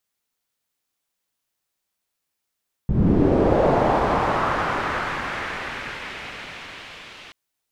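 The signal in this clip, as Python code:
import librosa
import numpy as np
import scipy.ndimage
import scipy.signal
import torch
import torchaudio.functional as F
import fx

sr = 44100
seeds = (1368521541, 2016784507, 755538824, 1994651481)

y = fx.riser_noise(sr, seeds[0], length_s=4.43, colour='white', kind='lowpass', start_hz=110.0, end_hz=3000.0, q=1.6, swell_db=-39.0, law='linear')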